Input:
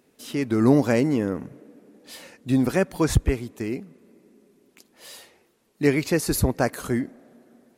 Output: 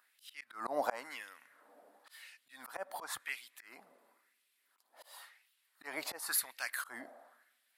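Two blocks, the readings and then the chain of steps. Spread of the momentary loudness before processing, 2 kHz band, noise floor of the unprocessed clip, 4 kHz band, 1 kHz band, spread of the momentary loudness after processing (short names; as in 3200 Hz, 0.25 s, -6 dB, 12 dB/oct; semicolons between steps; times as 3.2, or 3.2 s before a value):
20 LU, -9.5 dB, -65 dBFS, -9.0 dB, -9.0 dB, 21 LU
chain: LFO high-pass sine 0.95 Hz 660–2700 Hz; fifteen-band EQ 160 Hz -7 dB, 400 Hz -10 dB, 2500 Hz -8 dB, 6300 Hz -10 dB; auto swell 0.227 s; gain -2 dB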